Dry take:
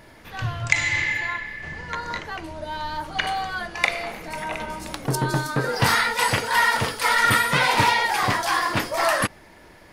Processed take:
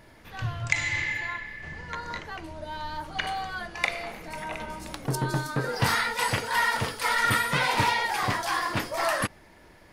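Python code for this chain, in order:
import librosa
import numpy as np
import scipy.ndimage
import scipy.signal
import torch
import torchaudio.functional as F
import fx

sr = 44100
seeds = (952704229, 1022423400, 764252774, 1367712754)

y = fx.low_shelf(x, sr, hz=170.0, db=3.0)
y = y * librosa.db_to_amplitude(-5.5)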